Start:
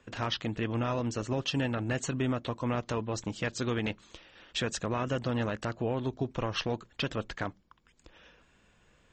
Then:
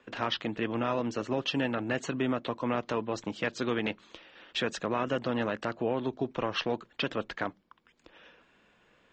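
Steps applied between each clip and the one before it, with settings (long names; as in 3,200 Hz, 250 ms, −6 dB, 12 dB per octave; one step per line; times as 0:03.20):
three-way crossover with the lows and the highs turned down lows −14 dB, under 180 Hz, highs −14 dB, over 4,700 Hz
level +2.5 dB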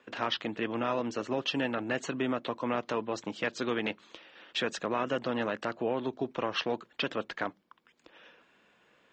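high-pass filter 190 Hz 6 dB per octave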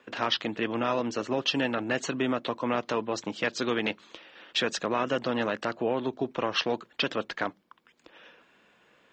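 dynamic equaliser 5,100 Hz, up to +5 dB, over −49 dBFS, Q 1.2
level +3 dB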